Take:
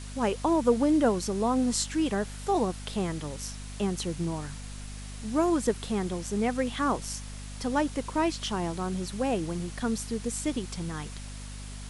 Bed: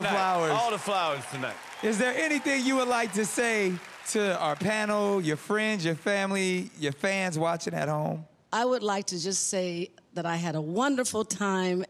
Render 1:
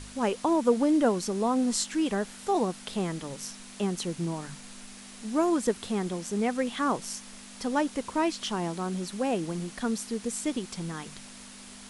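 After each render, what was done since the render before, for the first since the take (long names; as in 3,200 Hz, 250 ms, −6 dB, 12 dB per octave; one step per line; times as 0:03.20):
hum removal 50 Hz, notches 3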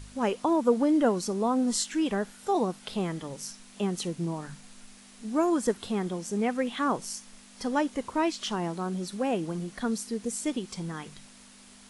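noise reduction from a noise print 6 dB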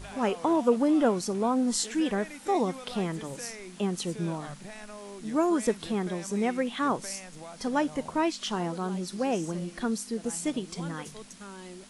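mix in bed −17.5 dB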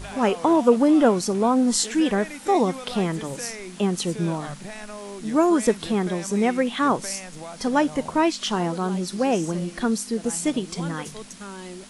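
level +6.5 dB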